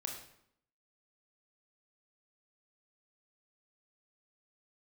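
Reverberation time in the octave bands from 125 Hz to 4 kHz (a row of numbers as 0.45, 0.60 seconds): 0.75, 0.80, 0.70, 0.70, 0.65, 0.55 seconds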